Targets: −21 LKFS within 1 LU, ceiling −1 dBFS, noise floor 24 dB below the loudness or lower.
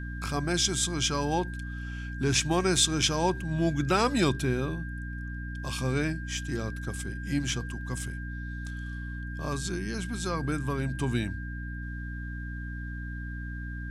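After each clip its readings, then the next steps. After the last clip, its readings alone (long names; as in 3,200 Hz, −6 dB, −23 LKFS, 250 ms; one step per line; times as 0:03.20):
mains hum 60 Hz; hum harmonics up to 300 Hz; level of the hum −34 dBFS; interfering tone 1,600 Hz; level of the tone −42 dBFS; integrated loudness −30.0 LKFS; sample peak −10.5 dBFS; target loudness −21.0 LKFS
→ mains-hum notches 60/120/180/240/300 Hz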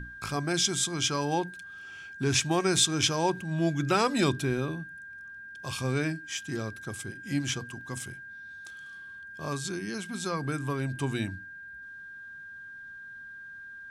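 mains hum none found; interfering tone 1,600 Hz; level of the tone −42 dBFS
→ notch filter 1,600 Hz, Q 30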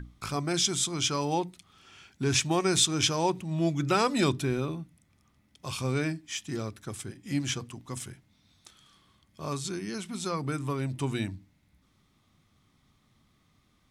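interfering tone none found; integrated loudness −29.5 LKFS; sample peak −10.5 dBFS; target loudness −21.0 LKFS
→ level +8.5 dB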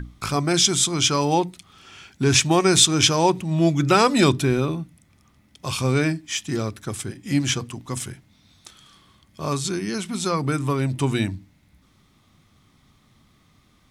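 integrated loudness −21.0 LKFS; sample peak −2.0 dBFS; background noise floor −60 dBFS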